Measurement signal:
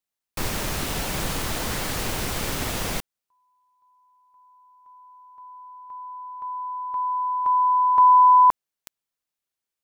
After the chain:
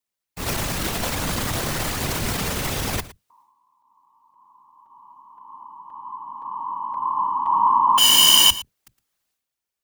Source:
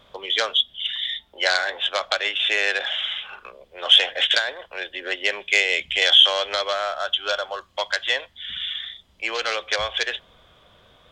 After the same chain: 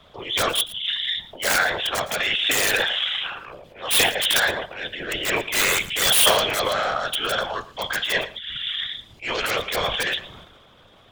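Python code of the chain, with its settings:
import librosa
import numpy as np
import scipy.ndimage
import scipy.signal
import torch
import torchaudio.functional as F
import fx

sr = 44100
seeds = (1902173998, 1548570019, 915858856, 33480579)

p1 = fx.octave_divider(x, sr, octaves=2, level_db=-3.0)
p2 = (np.mod(10.0 ** (11.5 / 20.0) * p1 + 1.0, 2.0) - 1.0) / 10.0 ** (11.5 / 20.0)
p3 = fx.transient(p2, sr, attack_db=-8, sustain_db=9)
p4 = fx.whisperise(p3, sr, seeds[0])
p5 = p4 + fx.echo_single(p4, sr, ms=113, db=-17.0, dry=0)
y = p5 * librosa.db_to_amplitude(1.5)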